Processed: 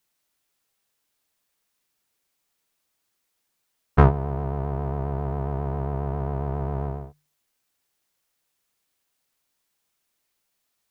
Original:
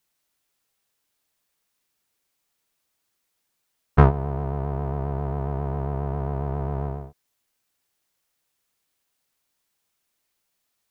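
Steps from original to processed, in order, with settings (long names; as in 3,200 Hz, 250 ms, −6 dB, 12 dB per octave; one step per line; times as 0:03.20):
mains-hum notches 50/100/150 Hz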